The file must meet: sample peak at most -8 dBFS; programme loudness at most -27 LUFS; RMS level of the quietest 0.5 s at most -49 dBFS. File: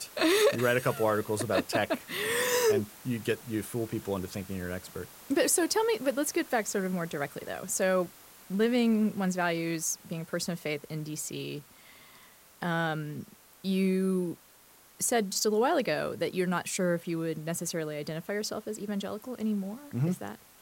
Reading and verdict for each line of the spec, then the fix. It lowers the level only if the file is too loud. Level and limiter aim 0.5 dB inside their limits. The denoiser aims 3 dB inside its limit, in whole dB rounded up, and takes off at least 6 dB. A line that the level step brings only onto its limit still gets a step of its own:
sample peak -11.5 dBFS: OK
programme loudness -30.0 LUFS: OK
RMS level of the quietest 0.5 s -58 dBFS: OK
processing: none

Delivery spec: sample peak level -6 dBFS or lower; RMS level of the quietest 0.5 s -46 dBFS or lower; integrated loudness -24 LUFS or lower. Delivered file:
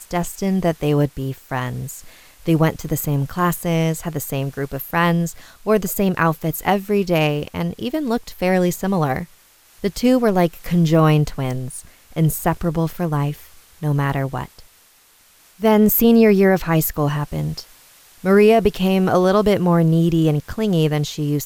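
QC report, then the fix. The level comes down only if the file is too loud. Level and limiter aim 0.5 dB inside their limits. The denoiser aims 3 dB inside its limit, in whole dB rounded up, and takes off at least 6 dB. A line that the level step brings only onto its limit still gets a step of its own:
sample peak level -4.0 dBFS: fail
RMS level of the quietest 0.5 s -53 dBFS: OK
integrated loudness -19.0 LUFS: fail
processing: gain -5.5 dB

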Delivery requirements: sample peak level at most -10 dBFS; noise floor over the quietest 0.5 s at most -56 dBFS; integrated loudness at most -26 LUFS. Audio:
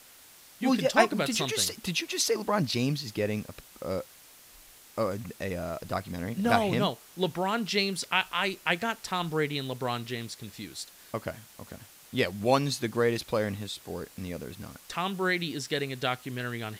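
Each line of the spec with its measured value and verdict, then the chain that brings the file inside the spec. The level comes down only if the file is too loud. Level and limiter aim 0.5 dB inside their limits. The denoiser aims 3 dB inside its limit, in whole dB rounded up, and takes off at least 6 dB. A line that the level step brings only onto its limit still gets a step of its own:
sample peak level -7.0 dBFS: fail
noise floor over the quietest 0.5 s -54 dBFS: fail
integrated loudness -29.5 LUFS: OK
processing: denoiser 6 dB, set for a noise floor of -54 dBFS; limiter -10.5 dBFS

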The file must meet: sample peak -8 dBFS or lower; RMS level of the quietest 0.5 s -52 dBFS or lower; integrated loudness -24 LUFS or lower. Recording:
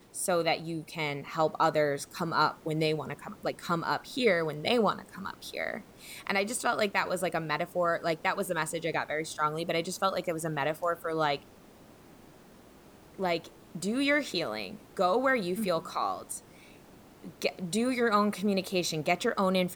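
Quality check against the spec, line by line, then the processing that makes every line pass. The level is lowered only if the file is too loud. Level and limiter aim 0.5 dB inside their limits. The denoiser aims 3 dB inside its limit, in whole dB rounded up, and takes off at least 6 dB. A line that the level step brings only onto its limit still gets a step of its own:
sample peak -13.0 dBFS: OK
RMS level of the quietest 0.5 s -55 dBFS: OK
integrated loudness -30.0 LUFS: OK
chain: none

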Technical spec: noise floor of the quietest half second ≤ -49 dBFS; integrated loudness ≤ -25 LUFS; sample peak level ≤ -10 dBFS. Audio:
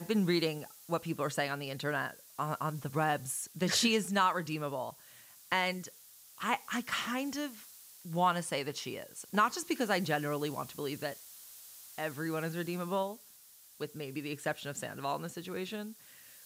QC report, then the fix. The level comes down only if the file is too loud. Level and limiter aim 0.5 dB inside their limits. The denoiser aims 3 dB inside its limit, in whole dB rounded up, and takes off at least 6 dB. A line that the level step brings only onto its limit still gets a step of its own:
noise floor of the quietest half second -58 dBFS: OK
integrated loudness -34.5 LUFS: OK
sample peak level -15.0 dBFS: OK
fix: none

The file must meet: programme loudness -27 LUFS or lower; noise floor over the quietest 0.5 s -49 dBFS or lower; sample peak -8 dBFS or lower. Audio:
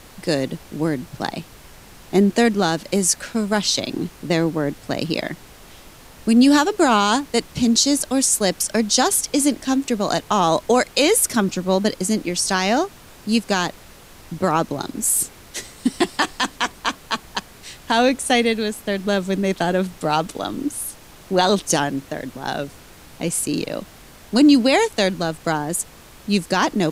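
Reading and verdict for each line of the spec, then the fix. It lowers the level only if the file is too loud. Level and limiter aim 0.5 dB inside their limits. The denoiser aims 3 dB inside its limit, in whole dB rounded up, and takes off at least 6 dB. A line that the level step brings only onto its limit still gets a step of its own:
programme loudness -20.0 LUFS: fail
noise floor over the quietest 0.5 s -44 dBFS: fail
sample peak -5.0 dBFS: fail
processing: gain -7.5 dB

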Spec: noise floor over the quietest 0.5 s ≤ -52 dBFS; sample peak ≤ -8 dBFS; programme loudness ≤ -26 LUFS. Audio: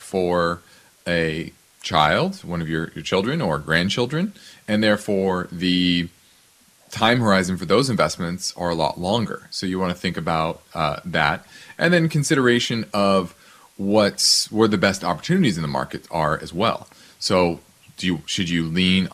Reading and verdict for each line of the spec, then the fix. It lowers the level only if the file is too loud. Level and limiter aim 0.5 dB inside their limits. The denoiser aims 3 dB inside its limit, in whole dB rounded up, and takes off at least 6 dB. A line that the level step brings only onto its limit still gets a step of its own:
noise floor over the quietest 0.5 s -55 dBFS: OK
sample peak -2.0 dBFS: fail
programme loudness -21.0 LUFS: fail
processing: gain -5.5 dB; limiter -8.5 dBFS

